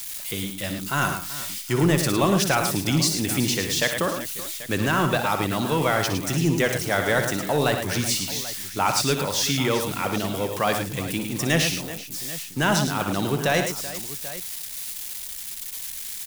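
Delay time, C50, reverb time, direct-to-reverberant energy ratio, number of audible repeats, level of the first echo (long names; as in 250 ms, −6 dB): 61 ms, no reverb audible, no reverb audible, no reverb audible, 4, −10.0 dB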